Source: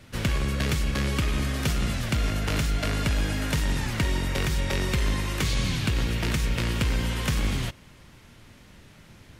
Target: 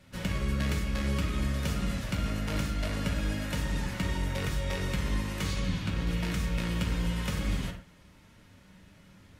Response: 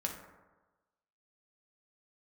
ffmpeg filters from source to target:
-filter_complex "[0:a]asettb=1/sr,asplit=3[s0][s1][s2];[s0]atrim=end=5.594[s3];[s1]atrim=start=5.59:end=6.07,asetpts=PTS-STARTPTS,afade=t=in:d=0.004:c=qsin,afade=t=out:st=0.476:d=0.004:c=qsin,highshelf=f=5300:g=-7.5[s4];[s2]atrim=start=6.066[s5];[s3][s4]acrossfade=d=0.004:c1=hsin:c2=qsin[s6];[s6][s5]acrossfade=d=0.004:c1=qsin:c2=hsin[s7];[1:a]atrim=start_sample=2205,atrim=end_sample=6174[s8];[s7][s8]afir=irnorm=-1:irlink=0,volume=0.422"

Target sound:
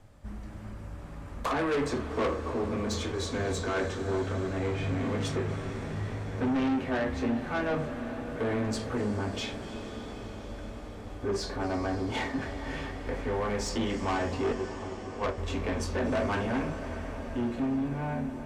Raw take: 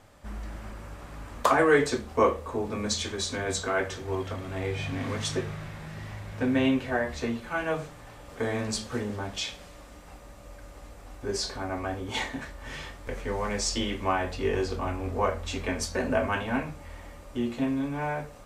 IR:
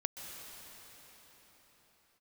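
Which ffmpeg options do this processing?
-filter_complex "[0:a]asettb=1/sr,asplit=3[s0][s1][s2];[s0]atrim=end=14.524[s3];[s1]atrim=start=14.52:end=15.38,asetpts=PTS-STARTPTS,afade=t=in:d=0.004:c=qsin,afade=t=out:st=0.856:d=0.004:c=qsin,agate=range=0.158:threshold=0.0631:ratio=16:detection=peak[s4];[s2]atrim=start=15.376[s5];[s3][s4]acrossfade=d=0.004:c1=hsin:c2=qsin[s6];[s6][s5]acrossfade=d=0.004:c1=qsin:c2=hsin,lowshelf=f=300:g=11.5,acrossover=split=220|2700[s7][s8][s9];[s8]dynaudnorm=f=320:g=9:m=2.51[s10];[s7][s10][s9]amix=inputs=3:normalize=0,flanger=delay=9.4:depth=3:regen=-66:speed=0.19:shape=sinusoidal,asoftclip=type=tanh:threshold=0.075,asplit=2[s11][s12];[1:a]atrim=start_sample=2205,asetrate=22932,aresample=44100[s13];[s12][s13]afir=irnorm=-1:irlink=0,volume=0.501[s14];[s11][s14]amix=inputs=2:normalize=0,volume=0.447"

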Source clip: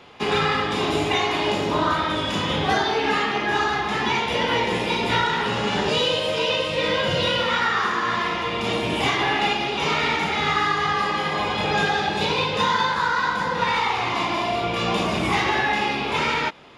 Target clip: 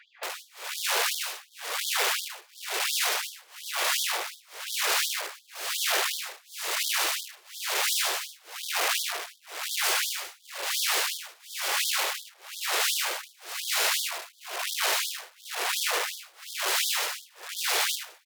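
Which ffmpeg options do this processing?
-af "lowpass=8700,lowshelf=f=110:g=6,asetrate=33038,aresample=44100,atempo=1.33484,aeval=exprs='(mod(10.6*val(0)+1,2)-1)/10.6':c=same,aecho=1:1:70|124|189|377:0.447|0.133|0.112|0.119,tremolo=f=1.1:d=0.98,asetrate=40517,aresample=44100,afftfilt=real='re*gte(b*sr/1024,330*pow(3200/330,0.5+0.5*sin(2*PI*2.8*pts/sr)))':imag='im*gte(b*sr/1024,330*pow(3200/330,0.5+0.5*sin(2*PI*2.8*pts/sr)))':win_size=1024:overlap=0.75"

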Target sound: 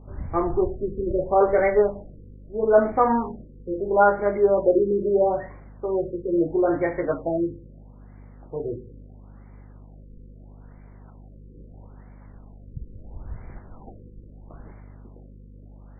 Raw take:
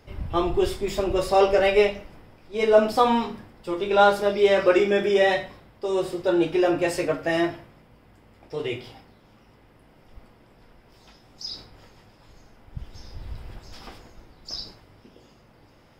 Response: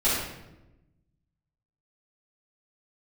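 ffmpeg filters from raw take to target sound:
-af "aeval=exprs='val(0)+0.00631*(sin(2*PI*50*n/s)+sin(2*PI*2*50*n/s)/2+sin(2*PI*3*50*n/s)/3+sin(2*PI*4*50*n/s)/4+sin(2*PI*5*50*n/s)/5)':c=same,afftfilt=real='re*lt(b*sr/1024,520*pow(2400/520,0.5+0.5*sin(2*PI*0.76*pts/sr)))':imag='im*lt(b*sr/1024,520*pow(2400/520,0.5+0.5*sin(2*PI*0.76*pts/sr)))':win_size=1024:overlap=0.75"

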